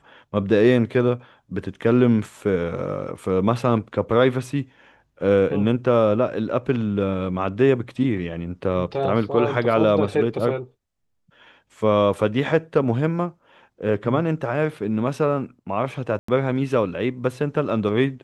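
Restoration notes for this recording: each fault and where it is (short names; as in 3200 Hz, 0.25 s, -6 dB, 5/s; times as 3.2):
16.19–16.28 gap 94 ms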